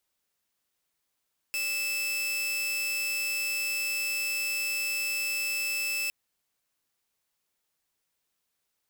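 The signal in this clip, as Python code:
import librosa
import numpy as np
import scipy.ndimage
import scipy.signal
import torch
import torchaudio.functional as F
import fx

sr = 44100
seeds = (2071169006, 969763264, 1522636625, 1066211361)

y = 10.0 ** (-25.5 / 20.0) * (2.0 * np.mod(2630.0 * (np.arange(round(4.56 * sr)) / sr), 1.0) - 1.0)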